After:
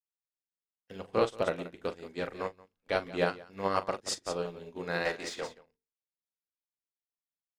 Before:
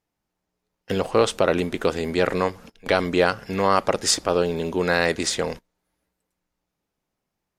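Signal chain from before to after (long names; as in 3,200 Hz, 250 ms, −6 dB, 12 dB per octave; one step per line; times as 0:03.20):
high-shelf EQ 6,700 Hz −4 dB
mains-hum notches 50/100/150/200/250/300/350/400/450 Hz
tape wow and flutter 16 cents
0:05.05–0:05.48: mid-hump overdrive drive 15 dB, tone 3,600 Hz, clips at −11 dBFS
loudspeakers that aren't time-aligned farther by 14 metres −6 dB, 61 metres −8 dB
expander for the loud parts 2.5 to 1, over −34 dBFS
level −7 dB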